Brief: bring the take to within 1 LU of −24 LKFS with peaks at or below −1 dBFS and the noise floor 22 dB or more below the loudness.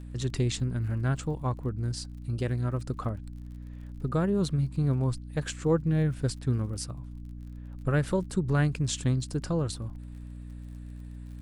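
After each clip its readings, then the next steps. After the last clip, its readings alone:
crackle rate 41 per second; mains hum 60 Hz; hum harmonics up to 300 Hz; level of the hum −40 dBFS; integrated loudness −30.0 LKFS; sample peak −13.5 dBFS; target loudness −24.0 LKFS
→ click removal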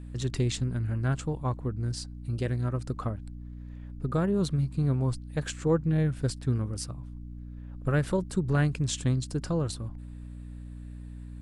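crackle rate 0 per second; mains hum 60 Hz; hum harmonics up to 300 Hz; level of the hum −40 dBFS
→ mains-hum notches 60/120/180/240/300 Hz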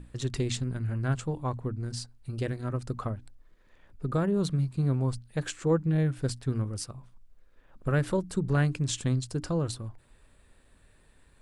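mains hum none found; integrated loudness −30.5 LKFS; sample peak −14.0 dBFS; target loudness −24.0 LKFS
→ level +6.5 dB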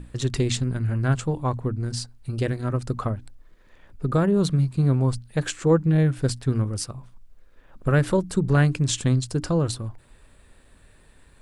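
integrated loudness −24.0 LKFS; sample peak −7.5 dBFS; background noise floor −55 dBFS

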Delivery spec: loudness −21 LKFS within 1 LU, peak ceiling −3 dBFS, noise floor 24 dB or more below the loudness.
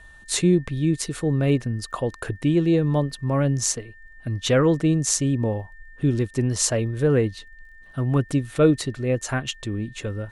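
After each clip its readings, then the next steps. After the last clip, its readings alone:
crackle rate 19 per second; interfering tone 1,800 Hz; level of the tone −47 dBFS; integrated loudness −23.0 LKFS; sample peak −3.0 dBFS; target loudness −21.0 LKFS
→ click removal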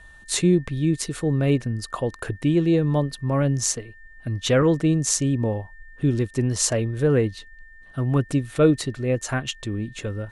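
crackle rate 0 per second; interfering tone 1,800 Hz; level of the tone −47 dBFS
→ notch filter 1,800 Hz, Q 30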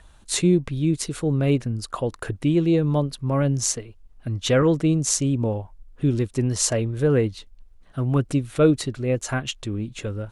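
interfering tone none found; integrated loudness −23.0 LKFS; sample peak −3.0 dBFS; target loudness −21.0 LKFS
→ level +2 dB
brickwall limiter −3 dBFS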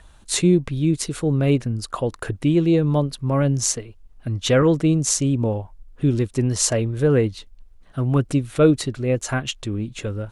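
integrated loudness −21.0 LKFS; sample peak −3.0 dBFS; background noise floor −49 dBFS

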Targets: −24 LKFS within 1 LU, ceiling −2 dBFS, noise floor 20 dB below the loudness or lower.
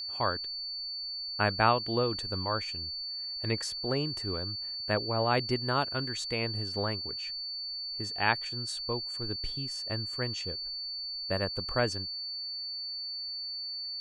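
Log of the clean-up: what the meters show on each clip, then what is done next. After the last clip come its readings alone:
interfering tone 4,500 Hz; level of the tone −35 dBFS; integrated loudness −31.5 LKFS; sample peak −9.5 dBFS; target loudness −24.0 LKFS
→ notch filter 4,500 Hz, Q 30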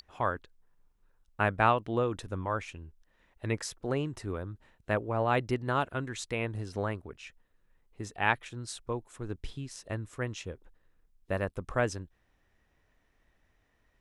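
interfering tone none found; integrated loudness −33.0 LKFS; sample peak −9.5 dBFS; target loudness −24.0 LKFS
→ level +9 dB
brickwall limiter −2 dBFS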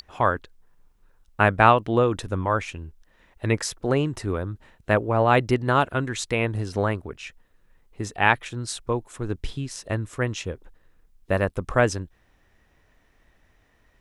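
integrated loudness −24.0 LKFS; sample peak −2.0 dBFS; background noise floor −63 dBFS

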